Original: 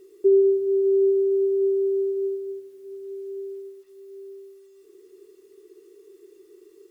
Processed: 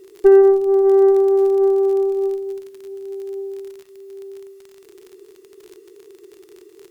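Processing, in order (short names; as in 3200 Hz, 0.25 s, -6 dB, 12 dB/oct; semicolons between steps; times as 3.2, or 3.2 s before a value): crackle 49/s -37 dBFS; added harmonics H 3 -28 dB, 4 -23 dB, 7 -37 dB, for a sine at -10 dBFS; gain +7.5 dB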